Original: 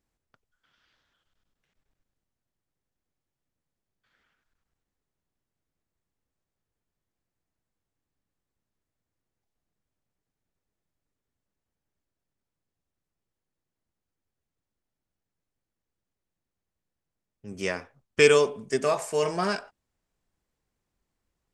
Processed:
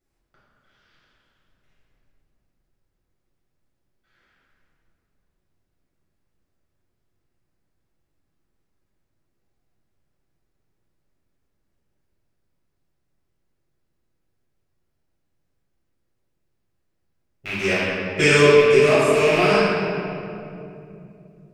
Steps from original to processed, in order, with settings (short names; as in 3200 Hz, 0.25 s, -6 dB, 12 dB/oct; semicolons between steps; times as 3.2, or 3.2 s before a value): rattling part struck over -39 dBFS, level -17 dBFS; reverb RT60 2.7 s, pre-delay 7 ms, DRR -11.5 dB; gain -5.5 dB